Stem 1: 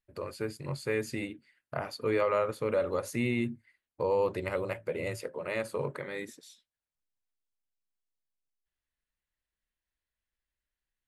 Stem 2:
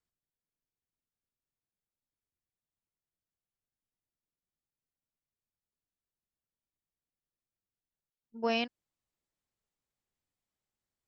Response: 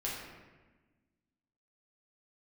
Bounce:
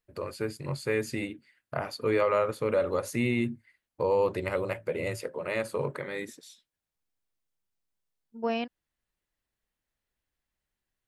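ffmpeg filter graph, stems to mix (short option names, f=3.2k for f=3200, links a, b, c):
-filter_complex "[0:a]volume=2.5dB[a];[1:a]lowpass=f=1.5k:p=1,volume=2dB[b];[a][b]amix=inputs=2:normalize=0"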